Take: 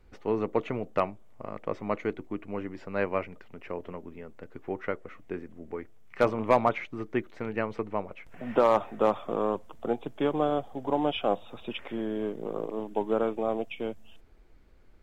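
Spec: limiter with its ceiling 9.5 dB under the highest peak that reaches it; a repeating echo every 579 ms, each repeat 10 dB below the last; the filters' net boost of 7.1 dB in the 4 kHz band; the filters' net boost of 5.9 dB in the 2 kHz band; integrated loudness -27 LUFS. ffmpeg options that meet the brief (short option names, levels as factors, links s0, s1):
-af "equalizer=f=2000:t=o:g=5.5,equalizer=f=4000:t=o:g=7.5,alimiter=limit=0.15:level=0:latency=1,aecho=1:1:579|1158|1737|2316:0.316|0.101|0.0324|0.0104,volume=1.88"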